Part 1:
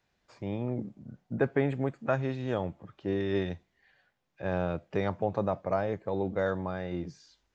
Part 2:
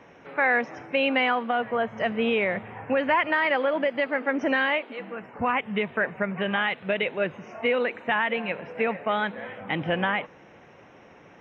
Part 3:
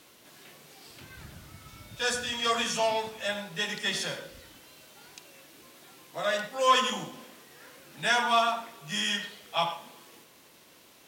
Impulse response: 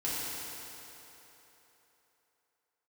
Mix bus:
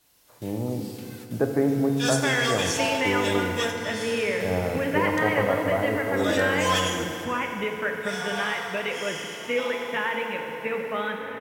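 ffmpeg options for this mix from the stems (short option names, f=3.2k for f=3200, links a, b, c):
-filter_complex "[0:a]lowpass=1.3k,volume=0.5dB,asplit=3[a][b][c];[b]volume=-7dB[d];[1:a]equalizer=f=730:t=o:w=0.23:g=-13,adelay=1850,volume=-6.5dB,asplit=2[e][f];[f]volume=-5dB[g];[2:a]highpass=430,highshelf=f=5.2k:g=10.5,asoftclip=type=hard:threshold=-17.5dB,volume=-3.5dB,asplit=2[h][i];[i]volume=-11dB[j];[c]apad=whole_len=488426[k];[h][k]sidechaingate=range=-33dB:threshold=-55dB:ratio=16:detection=peak[l];[3:a]atrim=start_sample=2205[m];[d][g][j]amix=inputs=3:normalize=0[n];[n][m]afir=irnorm=-1:irlink=0[o];[a][e][l][o]amix=inputs=4:normalize=0"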